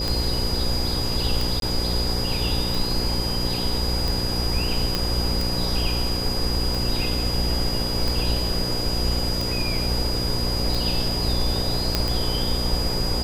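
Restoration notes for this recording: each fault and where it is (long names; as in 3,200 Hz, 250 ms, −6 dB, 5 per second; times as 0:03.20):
mains buzz 60 Hz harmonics 9 −28 dBFS
scratch tick 45 rpm
whistle 4,900 Hz −27 dBFS
0:01.60–0:01.62: drop-out 22 ms
0:04.95: click
0:11.95: click −5 dBFS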